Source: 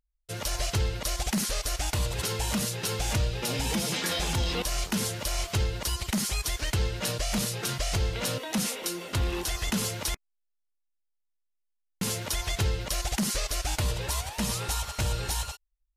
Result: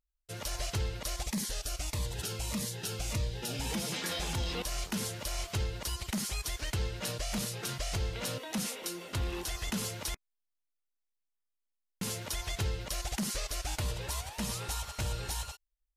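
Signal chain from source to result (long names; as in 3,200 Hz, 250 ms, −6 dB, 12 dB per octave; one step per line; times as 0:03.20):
0:01.25–0:03.61: phaser whose notches keep moving one way falling 1.6 Hz
level −6 dB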